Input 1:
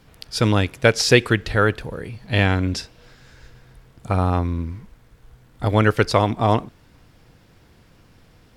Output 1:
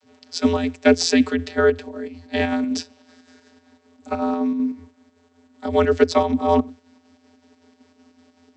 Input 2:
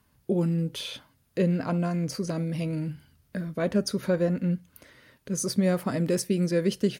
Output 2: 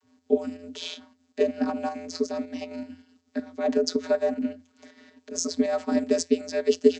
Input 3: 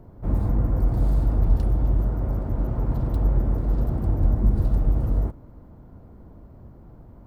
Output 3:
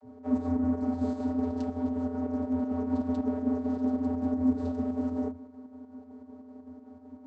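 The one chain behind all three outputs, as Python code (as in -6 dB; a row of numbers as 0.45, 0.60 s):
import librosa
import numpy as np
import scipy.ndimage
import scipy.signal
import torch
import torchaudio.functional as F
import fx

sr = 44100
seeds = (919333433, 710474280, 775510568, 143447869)

p1 = fx.bass_treble(x, sr, bass_db=1, treble_db=12)
p2 = fx.vocoder(p1, sr, bands=32, carrier='square', carrier_hz=85.4)
p3 = fx.volume_shaper(p2, sr, bpm=159, per_beat=2, depth_db=-15, release_ms=66.0, shape='slow start')
p4 = p2 + (p3 * librosa.db_to_amplitude(2.0))
y = p4 * librosa.db_to_amplitude(-6.0)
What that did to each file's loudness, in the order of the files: -0.5, 0.0, -6.0 LU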